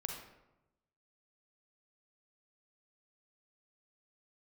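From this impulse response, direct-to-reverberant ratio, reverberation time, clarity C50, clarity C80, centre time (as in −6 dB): 1.5 dB, 0.95 s, 3.0 dB, 6.5 dB, 39 ms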